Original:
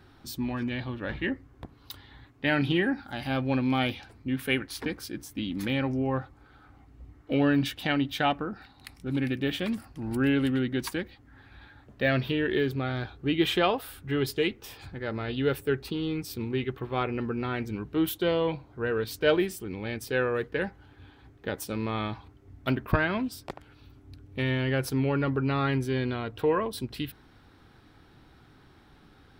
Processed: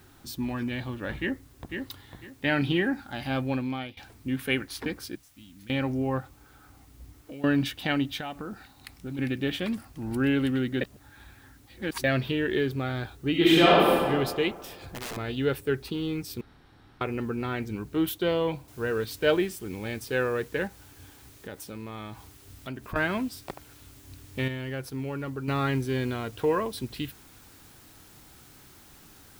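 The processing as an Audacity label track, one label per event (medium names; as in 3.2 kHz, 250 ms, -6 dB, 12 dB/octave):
1.190000	1.760000	echo throw 500 ms, feedback 25%, level -5 dB
3.400000	3.970000	fade out, to -19 dB
5.150000	5.700000	amplifier tone stack bass-middle-treble 6-0-2
6.200000	7.440000	compression, threshold -39 dBFS
8.180000	9.190000	compression, threshold -32 dBFS
10.810000	12.040000	reverse
13.310000	14.000000	reverb throw, RT60 1.9 s, DRR -6.5 dB
14.610000	15.170000	integer overflow gain 31 dB
16.410000	17.010000	room tone
18.680000	18.680000	noise floor step -63 dB -55 dB
20.670000	22.960000	compression 2:1, threshold -41 dBFS
24.480000	25.480000	gain -7 dB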